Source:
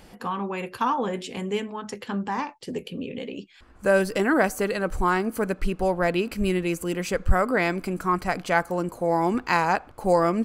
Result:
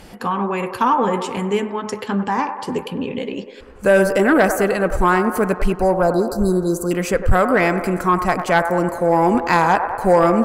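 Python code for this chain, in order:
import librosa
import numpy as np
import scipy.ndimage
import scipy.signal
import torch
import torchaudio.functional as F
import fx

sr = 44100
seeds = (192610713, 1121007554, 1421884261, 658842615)

p1 = fx.cheby1_bandstop(x, sr, low_hz=1500.0, high_hz=4000.0, order=4, at=(5.72, 6.91))
p2 = fx.dynamic_eq(p1, sr, hz=3900.0, q=1.3, threshold_db=-45.0, ratio=4.0, max_db=-7)
p3 = p2 + fx.echo_wet_bandpass(p2, sr, ms=99, feedback_pct=68, hz=840.0, wet_db=-9, dry=0)
y = fx.fold_sine(p3, sr, drive_db=4, ceiling_db=-6.0)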